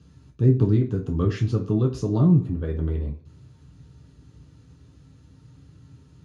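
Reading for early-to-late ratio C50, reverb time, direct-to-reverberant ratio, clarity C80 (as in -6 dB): 11.0 dB, 0.45 s, -0.5 dB, 16.5 dB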